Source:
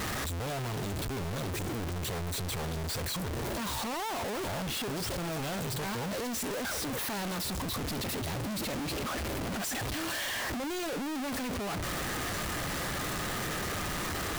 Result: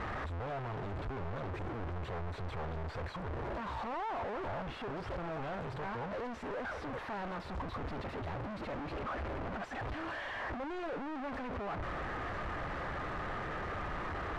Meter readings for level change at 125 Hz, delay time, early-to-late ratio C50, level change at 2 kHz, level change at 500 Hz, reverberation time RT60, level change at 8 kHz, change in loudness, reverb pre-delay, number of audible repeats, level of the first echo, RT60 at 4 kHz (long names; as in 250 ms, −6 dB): −5.0 dB, no echo audible, no reverb audible, −5.5 dB, −3.5 dB, no reverb audible, below −25 dB, −6.0 dB, no reverb audible, no echo audible, no echo audible, no reverb audible